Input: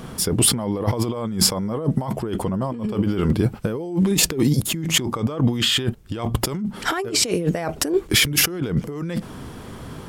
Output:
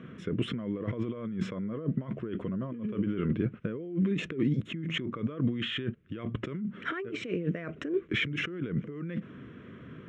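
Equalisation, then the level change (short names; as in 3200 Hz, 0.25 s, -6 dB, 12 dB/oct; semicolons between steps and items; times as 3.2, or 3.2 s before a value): BPF 140–4500 Hz; air absorption 170 m; fixed phaser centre 2000 Hz, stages 4; -6.5 dB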